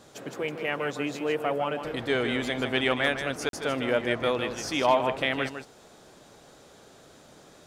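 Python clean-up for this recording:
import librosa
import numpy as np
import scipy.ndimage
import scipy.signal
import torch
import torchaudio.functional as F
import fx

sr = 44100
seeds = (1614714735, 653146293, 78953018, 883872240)

y = fx.fix_declip(x, sr, threshold_db=-12.0)
y = fx.fix_declick_ar(y, sr, threshold=6.5)
y = fx.fix_interpolate(y, sr, at_s=(3.49,), length_ms=42.0)
y = fx.fix_echo_inverse(y, sr, delay_ms=154, level_db=-8.5)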